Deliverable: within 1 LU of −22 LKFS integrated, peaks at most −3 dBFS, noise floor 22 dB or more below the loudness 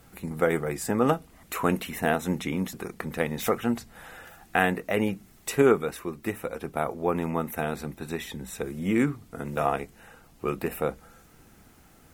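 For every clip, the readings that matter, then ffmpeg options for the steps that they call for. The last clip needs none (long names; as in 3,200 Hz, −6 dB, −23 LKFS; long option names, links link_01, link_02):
integrated loudness −28.5 LKFS; sample peak −5.0 dBFS; target loudness −22.0 LKFS
→ -af "volume=6.5dB,alimiter=limit=-3dB:level=0:latency=1"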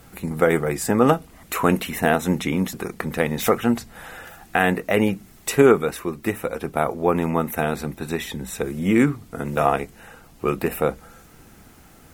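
integrated loudness −22.5 LKFS; sample peak −3.0 dBFS; background noise floor −49 dBFS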